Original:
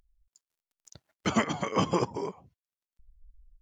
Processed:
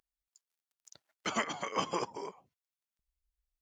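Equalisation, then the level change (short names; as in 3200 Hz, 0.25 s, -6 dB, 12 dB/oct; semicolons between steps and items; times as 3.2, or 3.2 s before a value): HPF 710 Hz 6 dB/oct; -2.5 dB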